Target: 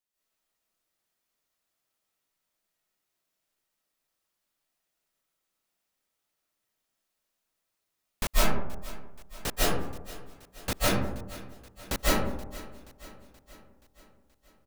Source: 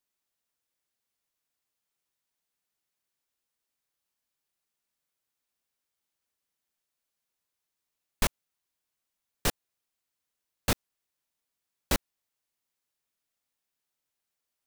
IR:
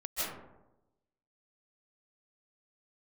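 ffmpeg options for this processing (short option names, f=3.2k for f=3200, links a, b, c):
-filter_complex "[0:a]aecho=1:1:477|954|1431|1908|2385:0.126|0.0718|0.0409|0.0233|0.0133[a];[1:a]atrim=start_sample=2205[b];[a][b]afir=irnorm=-1:irlink=0"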